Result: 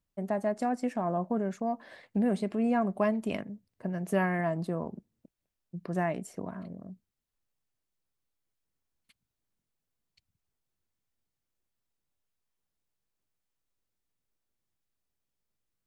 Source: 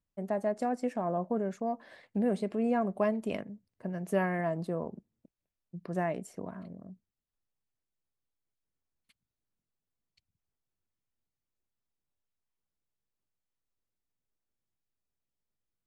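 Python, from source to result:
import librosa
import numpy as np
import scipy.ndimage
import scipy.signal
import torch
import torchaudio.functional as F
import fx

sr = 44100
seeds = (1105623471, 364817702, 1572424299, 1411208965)

y = fx.dynamic_eq(x, sr, hz=490.0, q=2.1, threshold_db=-43.0, ratio=4.0, max_db=-5)
y = y * 10.0 ** (3.0 / 20.0)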